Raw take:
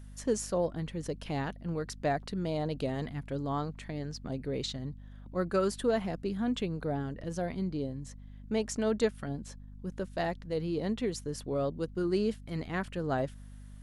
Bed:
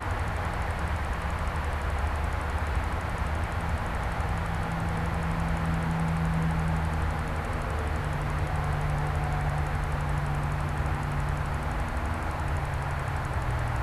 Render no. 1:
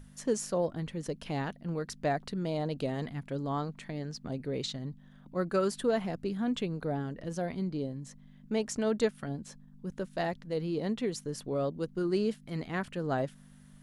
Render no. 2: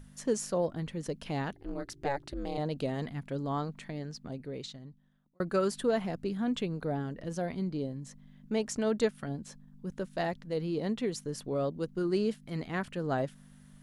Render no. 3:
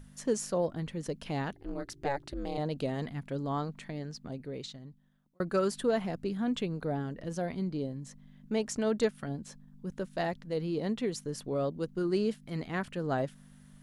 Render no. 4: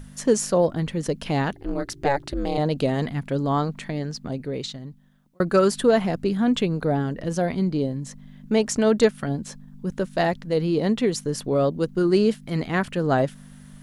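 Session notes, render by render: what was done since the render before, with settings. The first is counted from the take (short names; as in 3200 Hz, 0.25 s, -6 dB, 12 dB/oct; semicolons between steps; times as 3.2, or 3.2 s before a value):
notches 50/100 Hz
1.53–2.58 ring modulator 140 Hz; 3.77–5.4 fade out
hard clip -17.5 dBFS, distortion -42 dB
gain +10.5 dB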